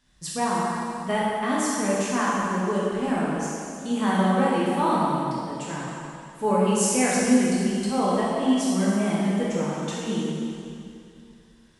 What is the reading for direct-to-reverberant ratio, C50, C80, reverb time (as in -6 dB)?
-7.5 dB, -3.0 dB, -1.5 dB, 2.6 s